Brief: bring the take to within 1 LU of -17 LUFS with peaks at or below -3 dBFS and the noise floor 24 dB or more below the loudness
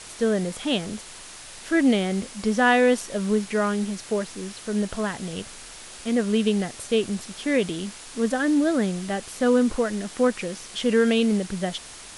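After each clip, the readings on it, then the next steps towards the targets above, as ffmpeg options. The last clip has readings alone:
noise floor -42 dBFS; noise floor target -48 dBFS; loudness -24.0 LUFS; peak level -7.0 dBFS; loudness target -17.0 LUFS
-> -af "afftdn=nr=6:nf=-42"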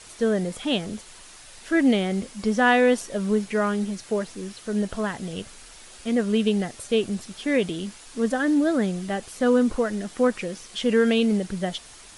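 noise floor -46 dBFS; noise floor target -48 dBFS
-> -af "afftdn=nr=6:nf=-46"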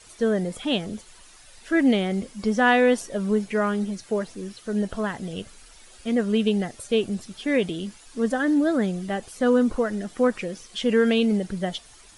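noise floor -50 dBFS; loudness -24.0 LUFS; peak level -7.0 dBFS; loudness target -17.0 LUFS
-> -af "volume=2.24,alimiter=limit=0.708:level=0:latency=1"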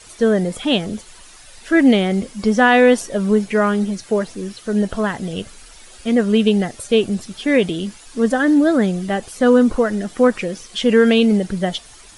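loudness -17.0 LUFS; peak level -3.0 dBFS; noise floor -43 dBFS

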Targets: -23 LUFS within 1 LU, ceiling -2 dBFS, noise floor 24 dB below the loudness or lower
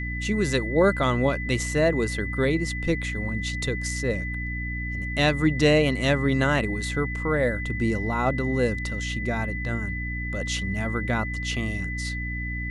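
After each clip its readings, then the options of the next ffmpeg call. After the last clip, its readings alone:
hum 60 Hz; highest harmonic 300 Hz; hum level -29 dBFS; steady tone 2 kHz; tone level -32 dBFS; loudness -25.0 LUFS; peak level -7.5 dBFS; loudness target -23.0 LUFS
-> -af "bandreject=f=60:t=h:w=6,bandreject=f=120:t=h:w=6,bandreject=f=180:t=h:w=6,bandreject=f=240:t=h:w=6,bandreject=f=300:t=h:w=6"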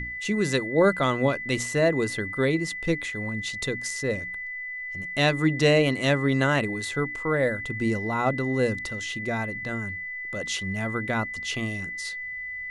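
hum not found; steady tone 2 kHz; tone level -32 dBFS
-> -af "bandreject=f=2000:w=30"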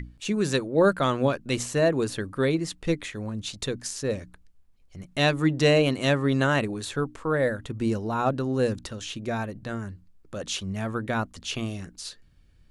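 steady tone not found; loudness -26.5 LUFS; peak level -8.0 dBFS; loudness target -23.0 LUFS
-> -af "volume=1.5"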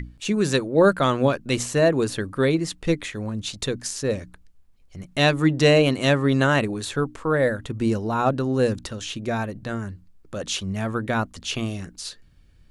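loudness -23.0 LUFS; peak level -4.5 dBFS; noise floor -54 dBFS

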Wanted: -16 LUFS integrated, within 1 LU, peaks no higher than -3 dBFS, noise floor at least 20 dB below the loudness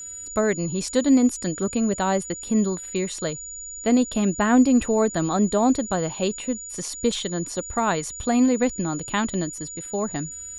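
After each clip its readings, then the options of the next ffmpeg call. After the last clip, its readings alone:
steady tone 6.9 kHz; tone level -34 dBFS; loudness -23.5 LUFS; peak level -6.5 dBFS; loudness target -16.0 LUFS
-> -af "bandreject=f=6900:w=30"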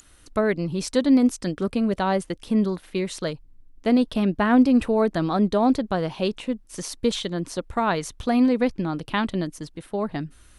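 steady tone not found; loudness -23.5 LUFS; peak level -7.0 dBFS; loudness target -16.0 LUFS
-> -af "volume=2.37,alimiter=limit=0.708:level=0:latency=1"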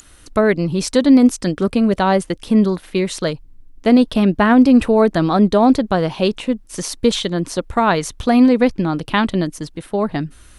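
loudness -16.5 LUFS; peak level -3.0 dBFS; noise floor -45 dBFS

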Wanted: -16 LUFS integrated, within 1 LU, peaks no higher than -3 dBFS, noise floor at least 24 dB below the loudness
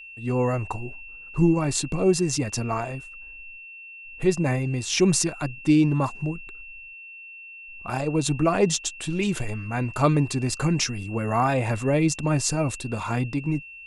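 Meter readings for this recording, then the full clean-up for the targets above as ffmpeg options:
steady tone 2.7 kHz; tone level -40 dBFS; loudness -24.5 LUFS; peak level -6.5 dBFS; loudness target -16.0 LUFS
-> -af "bandreject=f=2700:w=30"
-af "volume=2.66,alimiter=limit=0.708:level=0:latency=1"

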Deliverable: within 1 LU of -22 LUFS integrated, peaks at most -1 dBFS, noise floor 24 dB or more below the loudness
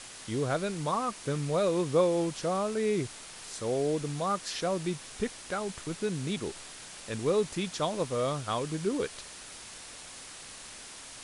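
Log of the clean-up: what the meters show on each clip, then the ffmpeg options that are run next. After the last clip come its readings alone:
noise floor -47 dBFS; noise floor target -56 dBFS; loudness -31.5 LUFS; peak level -14.0 dBFS; loudness target -22.0 LUFS
-> -af "afftdn=nr=9:nf=-47"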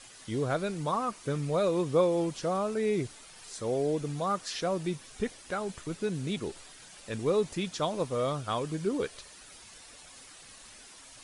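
noise floor -52 dBFS; noise floor target -56 dBFS
-> -af "afftdn=nr=6:nf=-52"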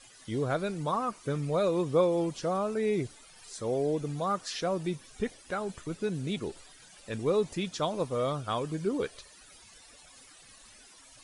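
noise floor -55 dBFS; noise floor target -56 dBFS
-> -af "afftdn=nr=6:nf=-55"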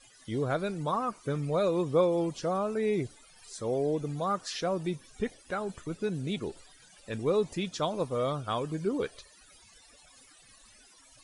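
noise floor -58 dBFS; loudness -31.5 LUFS; peak level -14.0 dBFS; loudness target -22.0 LUFS
-> -af "volume=2.99"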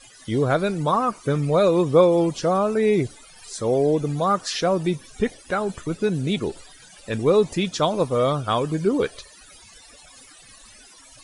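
loudness -22.0 LUFS; peak level -4.5 dBFS; noise floor -49 dBFS

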